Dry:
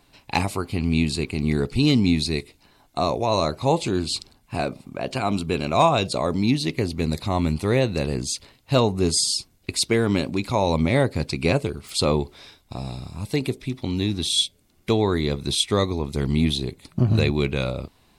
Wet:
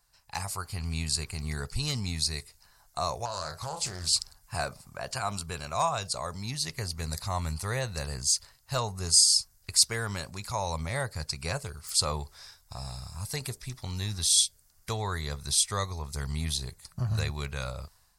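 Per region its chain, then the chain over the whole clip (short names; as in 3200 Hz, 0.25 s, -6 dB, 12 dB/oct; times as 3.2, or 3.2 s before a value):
3.25–4.13 doubler 33 ms -8.5 dB + compressor 4:1, threshold -24 dBFS + Doppler distortion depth 0.28 ms
whole clip: band shelf 2900 Hz -12 dB 1.1 oct; AGC; passive tone stack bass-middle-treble 10-0-10; gain -3.5 dB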